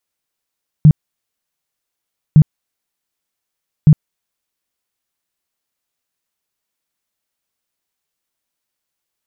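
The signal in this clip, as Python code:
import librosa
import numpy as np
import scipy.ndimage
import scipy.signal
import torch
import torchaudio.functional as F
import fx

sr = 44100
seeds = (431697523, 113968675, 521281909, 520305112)

y = fx.tone_burst(sr, hz=152.0, cycles=9, every_s=1.51, bursts=3, level_db=-2.0)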